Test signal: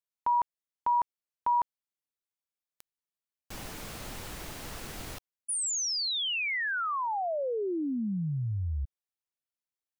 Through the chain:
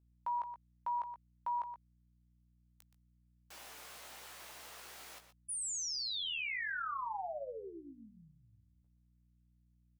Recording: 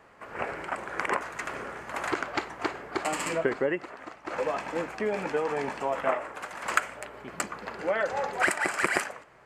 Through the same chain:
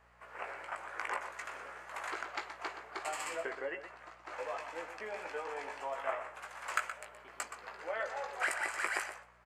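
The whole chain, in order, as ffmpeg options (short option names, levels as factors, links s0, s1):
-filter_complex "[0:a]highpass=610,asoftclip=type=hard:threshold=0.531,aeval=exprs='val(0)+0.000794*(sin(2*PI*60*n/s)+sin(2*PI*2*60*n/s)/2+sin(2*PI*3*60*n/s)/3+sin(2*PI*4*60*n/s)/4+sin(2*PI*5*60*n/s)/5)':c=same,asplit=2[s0][s1];[s1]adelay=18,volume=0.501[s2];[s0][s2]amix=inputs=2:normalize=0,asplit=2[s3][s4];[s4]adelay=122.4,volume=0.316,highshelf=f=4000:g=-2.76[s5];[s3][s5]amix=inputs=2:normalize=0,volume=0.355"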